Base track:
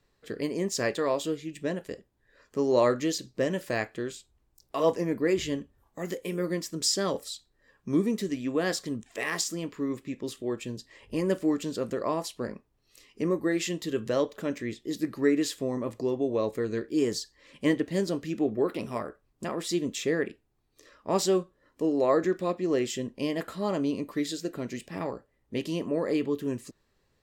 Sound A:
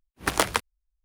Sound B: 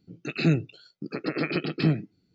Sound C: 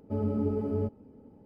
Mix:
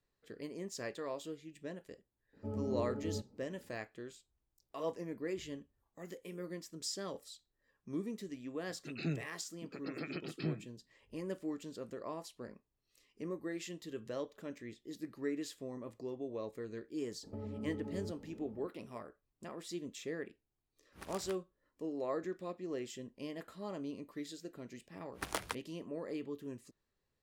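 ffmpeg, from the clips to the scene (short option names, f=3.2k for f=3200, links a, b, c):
-filter_complex "[3:a]asplit=2[a][b];[1:a]asplit=2[c][d];[0:a]volume=-14dB[e];[b]acompressor=threshold=-40dB:ratio=6:attack=3.2:release=140:knee=1:detection=peak[f];[c]acompressor=threshold=-32dB:ratio=6:attack=3.2:release=140:knee=1:detection=peak[g];[a]atrim=end=1.45,asetpts=PTS-STARTPTS,volume=-10dB,afade=t=in:d=0.004:c=hsin,afade=t=out:st=1.446:d=0.004:c=hsin,adelay=2330[h];[2:a]atrim=end=2.34,asetpts=PTS-STARTPTS,volume=-15dB,afade=t=in:d=0.004:c=hsin,afade=t=out:st=2.336:d=0.004:c=hsin,adelay=8600[i];[f]atrim=end=1.45,asetpts=PTS-STARTPTS,volume=-0.5dB,afade=t=in:d=0.004:c=hsin,afade=t=out:st=1.446:d=0.004:c=hsin,adelay=17230[j];[g]atrim=end=1.04,asetpts=PTS-STARTPTS,volume=-14dB,afade=t=in:d=0.004:c=hsin,afade=t=out:st=1.036:d=0.004:c=hsin,adelay=20750[k];[d]atrim=end=1.04,asetpts=PTS-STARTPTS,volume=-15.5dB,afade=t=in:d=0.004:c=hsin,afade=t=out:st=1.036:d=0.004:c=hsin,adelay=24950[l];[e][h][i][j][k][l]amix=inputs=6:normalize=0"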